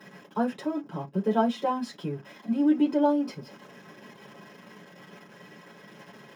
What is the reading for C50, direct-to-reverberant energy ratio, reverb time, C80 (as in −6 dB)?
22.5 dB, −4.5 dB, non-exponential decay, 32.0 dB